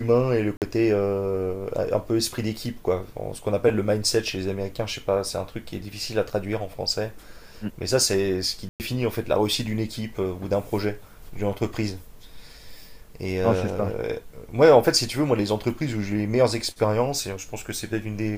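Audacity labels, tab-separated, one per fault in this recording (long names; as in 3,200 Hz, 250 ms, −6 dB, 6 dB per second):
0.570000	0.620000	drop-out 48 ms
8.690000	8.800000	drop-out 109 ms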